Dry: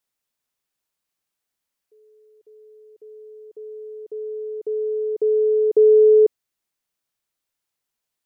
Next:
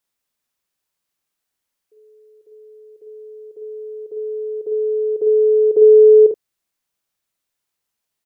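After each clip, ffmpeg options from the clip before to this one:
ffmpeg -i in.wav -af "aecho=1:1:49|76:0.562|0.224,volume=1.5dB" out.wav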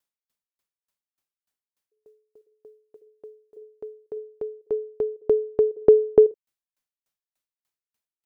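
ffmpeg -i in.wav -af "aeval=exprs='val(0)*pow(10,-38*if(lt(mod(3.4*n/s,1),2*abs(3.4)/1000),1-mod(3.4*n/s,1)/(2*abs(3.4)/1000),(mod(3.4*n/s,1)-2*abs(3.4)/1000)/(1-2*abs(3.4)/1000))/20)':channel_layout=same" out.wav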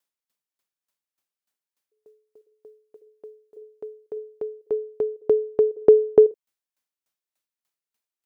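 ffmpeg -i in.wav -af "lowshelf=frequency=96:gain=-11.5,volume=1.5dB" out.wav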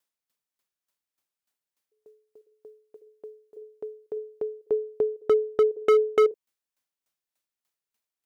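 ffmpeg -i in.wav -af "asoftclip=type=hard:threshold=-15dB" out.wav

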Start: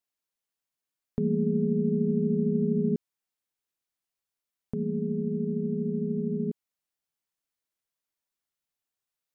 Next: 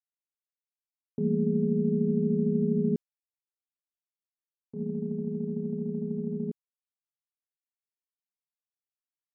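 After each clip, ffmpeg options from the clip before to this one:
ffmpeg -i in.wav -af "agate=range=-33dB:threshold=-25dB:ratio=3:detection=peak" out.wav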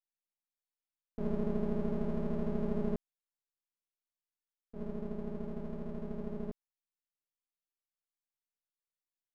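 ffmpeg -i in.wav -af "aeval=exprs='max(val(0),0)':channel_layout=same,volume=-4dB" out.wav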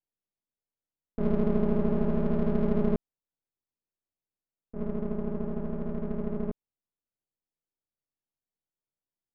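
ffmpeg -i in.wav -af "adynamicsmooth=sensitivity=7.5:basefreq=710,volume=8dB" out.wav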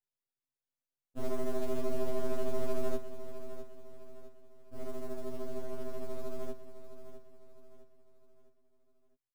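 ffmpeg -i in.wav -af "acrusher=bits=6:mode=log:mix=0:aa=0.000001,aecho=1:1:657|1314|1971|2628:0.266|0.112|0.0469|0.0197,afftfilt=real='re*2.45*eq(mod(b,6),0)':imag='im*2.45*eq(mod(b,6),0)':win_size=2048:overlap=0.75,volume=-2dB" out.wav

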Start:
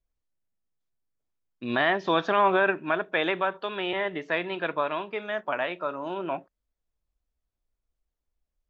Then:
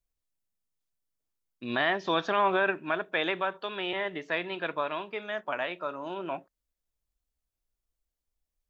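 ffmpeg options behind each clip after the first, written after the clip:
ffmpeg -i in.wav -af "highshelf=frequency=4100:gain=8,volume=-4dB" out.wav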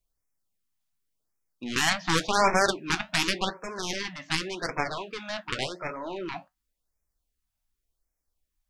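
ffmpeg -i in.wav -af "aeval=exprs='0.224*(cos(1*acos(clip(val(0)/0.224,-1,1)))-cos(1*PI/2))+0.0631*(cos(7*acos(clip(val(0)/0.224,-1,1)))-cos(7*PI/2))':channel_layout=same,flanger=delay=8:depth=4.8:regen=-64:speed=1.5:shape=triangular,afftfilt=real='re*(1-between(b*sr/1024,390*pow(3700/390,0.5+0.5*sin(2*PI*0.89*pts/sr))/1.41,390*pow(3700/390,0.5+0.5*sin(2*PI*0.89*pts/sr))*1.41))':imag='im*(1-between(b*sr/1024,390*pow(3700/390,0.5+0.5*sin(2*PI*0.89*pts/sr))/1.41,390*pow(3700/390,0.5+0.5*sin(2*PI*0.89*pts/sr))*1.41))':win_size=1024:overlap=0.75,volume=8.5dB" out.wav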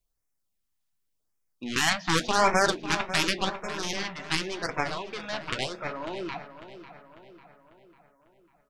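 ffmpeg -i in.wav -filter_complex "[0:a]asplit=2[link_01][link_02];[link_02]adelay=547,lowpass=frequency=3400:poles=1,volume=-12dB,asplit=2[link_03][link_04];[link_04]adelay=547,lowpass=frequency=3400:poles=1,volume=0.53,asplit=2[link_05][link_06];[link_06]adelay=547,lowpass=frequency=3400:poles=1,volume=0.53,asplit=2[link_07][link_08];[link_08]adelay=547,lowpass=frequency=3400:poles=1,volume=0.53,asplit=2[link_09][link_10];[link_10]adelay=547,lowpass=frequency=3400:poles=1,volume=0.53,asplit=2[link_11][link_12];[link_12]adelay=547,lowpass=frequency=3400:poles=1,volume=0.53[link_13];[link_01][link_03][link_05][link_07][link_09][link_11][link_13]amix=inputs=7:normalize=0" out.wav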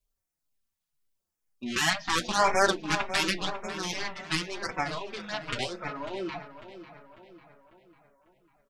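ffmpeg -i in.wav -filter_complex "[0:a]asplit=2[link_01][link_02];[link_02]adelay=4.4,afreqshift=-2[link_03];[link_01][link_03]amix=inputs=2:normalize=1,volume=1.5dB" out.wav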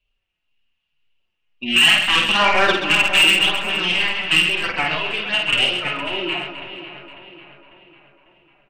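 ffmpeg -i in.wav -filter_complex "[0:a]lowpass=frequency=2800:width_type=q:width=13,asoftclip=type=tanh:threshold=-14dB,asplit=2[link_01][link_02];[link_02]aecho=0:1:50|130|258|462.8|790.5:0.631|0.398|0.251|0.158|0.1[link_03];[link_01][link_03]amix=inputs=2:normalize=0,volume=5dB" out.wav

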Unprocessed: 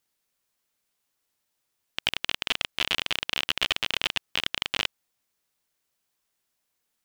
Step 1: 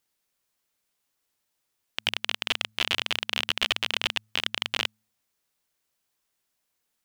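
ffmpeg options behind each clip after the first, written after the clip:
ffmpeg -i in.wav -af "bandreject=frequency=107.9:width_type=h:width=4,bandreject=frequency=215.8:width_type=h:width=4" out.wav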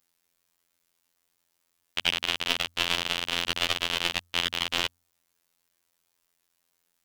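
ffmpeg -i in.wav -af "afftfilt=real='hypot(re,im)*cos(PI*b)':imag='0':win_size=2048:overlap=0.75,adynamicequalizer=threshold=0.00708:dfrequency=2400:dqfactor=1:tfrequency=2400:tqfactor=1:attack=5:release=100:ratio=0.375:range=2.5:mode=cutabove:tftype=bell,volume=6.5dB" out.wav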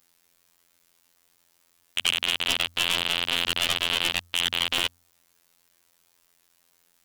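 ffmpeg -i in.wav -filter_complex "[0:a]asplit=2[link_01][link_02];[link_02]alimiter=limit=-13.5dB:level=0:latency=1:release=65,volume=1dB[link_03];[link_01][link_03]amix=inputs=2:normalize=0,aeval=exprs='1.12*sin(PI/2*2.51*val(0)/1.12)':channel_layout=same,volume=-9dB" out.wav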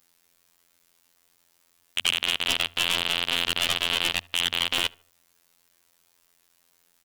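ffmpeg -i in.wav -filter_complex "[0:a]asplit=2[link_01][link_02];[link_02]adelay=74,lowpass=frequency=2200:poles=1,volume=-24dB,asplit=2[link_03][link_04];[link_04]adelay=74,lowpass=frequency=2200:poles=1,volume=0.44,asplit=2[link_05][link_06];[link_06]adelay=74,lowpass=frequency=2200:poles=1,volume=0.44[link_07];[link_01][link_03][link_05][link_07]amix=inputs=4:normalize=0" out.wav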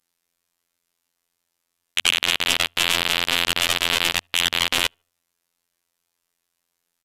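ffmpeg -i in.wav -af "aeval=exprs='0.422*(cos(1*acos(clip(val(0)/0.422,-1,1)))-cos(1*PI/2))+0.0299*(cos(3*acos(clip(val(0)/0.422,-1,1)))-cos(3*PI/2))+0.0376*(cos(7*acos(clip(val(0)/0.422,-1,1)))-cos(7*PI/2))':channel_layout=same,aresample=32000,aresample=44100,volume=6dB" out.wav

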